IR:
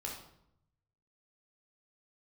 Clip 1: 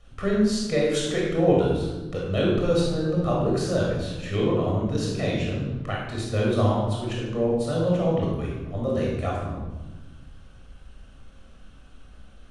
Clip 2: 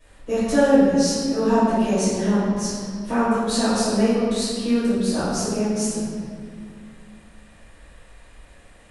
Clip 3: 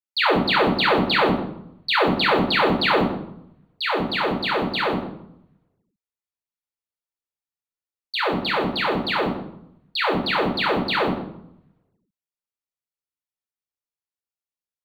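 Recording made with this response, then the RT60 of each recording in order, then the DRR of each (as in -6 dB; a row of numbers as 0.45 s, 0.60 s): 3; 1.2 s, 2.1 s, 0.75 s; -3.5 dB, -14.5 dB, -2.0 dB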